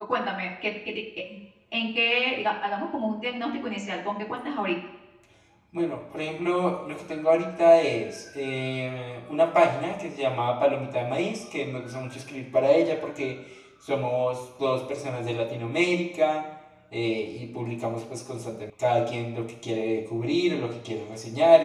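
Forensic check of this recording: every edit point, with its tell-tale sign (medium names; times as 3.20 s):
18.70 s: sound stops dead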